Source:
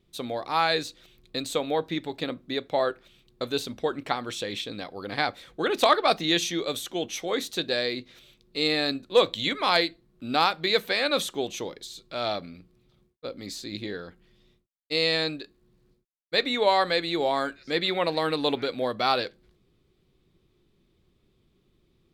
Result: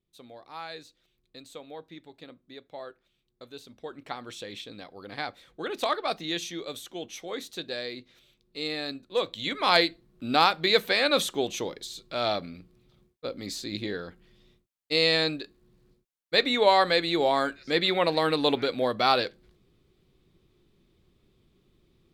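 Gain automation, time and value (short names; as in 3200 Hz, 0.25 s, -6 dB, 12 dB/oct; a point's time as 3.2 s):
3.59 s -16 dB
4.21 s -7.5 dB
9.31 s -7.5 dB
9.73 s +1.5 dB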